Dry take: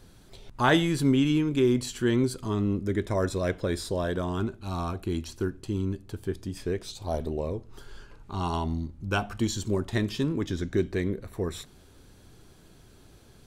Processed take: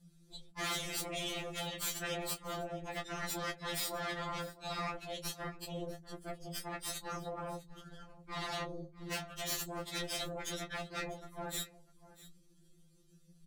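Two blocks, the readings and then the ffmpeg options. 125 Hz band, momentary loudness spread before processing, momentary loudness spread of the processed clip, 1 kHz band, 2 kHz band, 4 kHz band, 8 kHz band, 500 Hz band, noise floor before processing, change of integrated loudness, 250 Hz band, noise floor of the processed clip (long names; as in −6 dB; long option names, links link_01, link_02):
−18.0 dB, 11 LU, 11 LU, −7.5 dB, −7.0 dB, −3.0 dB, 0.0 dB, −13.5 dB, −54 dBFS, −11.0 dB, −19.5 dB, −64 dBFS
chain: -filter_complex "[0:a]lowpass=11000,afftdn=noise_reduction=23:noise_floor=-45,crystalizer=i=8:c=0,acompressor=threshold=-35dB:ratio=2.5,aeval=exprs='0.126*(cos(1*acos(clip(val(0)/0.126,-1,1)))-cos(1*PI/2))+0.0501*(cos(6*acos(clip(val(0)/0.126,-1,1)))-cos(6*PI/2))':channel_layout=same,afftfilt=real='hypot(re,im)*cos(2*PI*random(0))':imag='hypot(re,im)*sin(2*PI*random(1))':win_size=512:overlap=0.75,afftfilt=real='re*lt(hypot(re,im),0.0708)':imag='im*lt(hypot(re,im),0.0708)':win_size=1024:overlap=0.75,volume=32dB,asoftclip=hard,volume=-32dB,asplit=2[link_01][link_02];[link_02]adelay=19,volume=-10dB[link_03];[link_01][link_03]amix=inputs=2:normalize=0,asplit=2[link_04][link_05];[link_05]aecho=0:1:648:0.112[link_06];[link_04][link_06]amix=inputs=2:normalize=0,afftfilt=real='re*2.83*eq(mod(b,8),0)':imag='im*2.83*eq(mod(b,8),0)':win_size=2048:overlap=0.75,volume=2dB"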